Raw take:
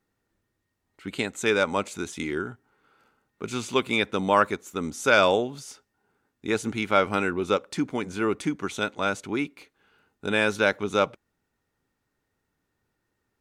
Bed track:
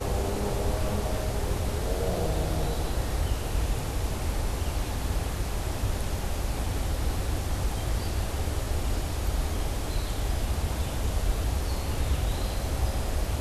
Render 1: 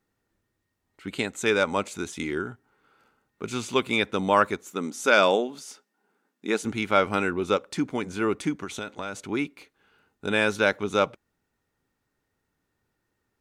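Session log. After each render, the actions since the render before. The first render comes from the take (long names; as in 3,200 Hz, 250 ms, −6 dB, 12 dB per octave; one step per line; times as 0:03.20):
0:04.72–0:06.65: linear-phase brick-wall high-pass 160 Hz
0:08.55–0:09.26: downward compressor 12 to 1, threshold −28 dBFS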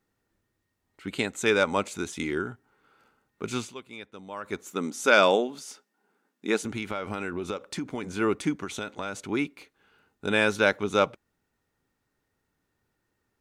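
0:03.58–0:04.59: duck −18 dB, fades 0.16 s
0:06.59–0:08.04: downward compressor 12 to 1, threshold −27 dBFS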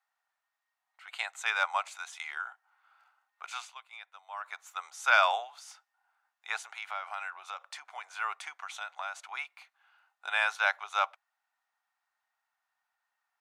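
Chebyshev high-pass filter 710 Hz, order 5
high-shelf EQ 4,300 Hz −10.5 dB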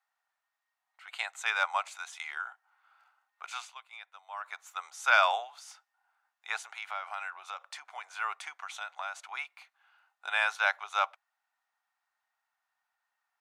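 no processing that can be heard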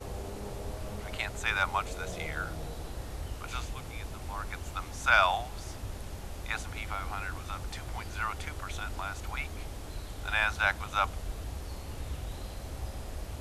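mix in bed track −11 dB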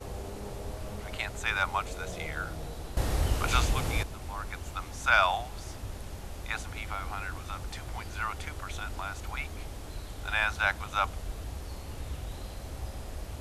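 0:02.97–0:04.03: clip gain +11 dB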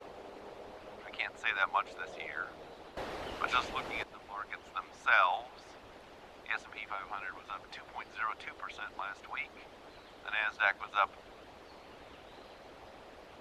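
three-way crossover with the lows and the highs turned down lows −22 dB, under 270 Hz, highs −20 dB, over 4,200 Hz
harmonic and percussive parts rebalanced harmonic −10 dB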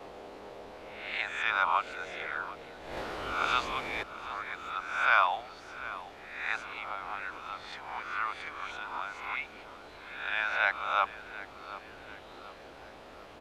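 peak hold with a rise ahead of every peak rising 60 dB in 0.80 s
repeating echo 738 ms, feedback 45%, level −16 dB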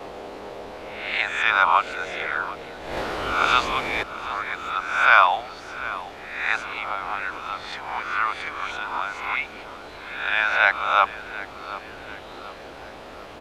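level +9.5 dB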